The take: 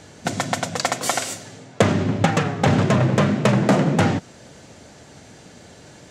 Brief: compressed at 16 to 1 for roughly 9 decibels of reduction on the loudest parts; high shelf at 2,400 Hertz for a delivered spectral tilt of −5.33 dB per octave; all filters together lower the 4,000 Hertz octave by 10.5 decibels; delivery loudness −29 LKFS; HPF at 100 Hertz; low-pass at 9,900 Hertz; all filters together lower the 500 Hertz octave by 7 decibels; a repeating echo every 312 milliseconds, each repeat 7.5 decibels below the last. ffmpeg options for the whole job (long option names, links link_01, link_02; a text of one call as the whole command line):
ffmpeg -i in.wav -af "highpass=100,lowpass=9900,equalizer=frequency=500:width_type=o:gain=-8.5,highshelf=frequency=2400:gain=-8,equalizer=frequency=4000:width_type=o:gain=-6.5,acompressor=threshold=-24dB:ratio=16,aecho=1:1:312|624|936|1248|1560:0.422|0.177|0.0744|0.0312|0.0131,volume=0.5dB" out.wav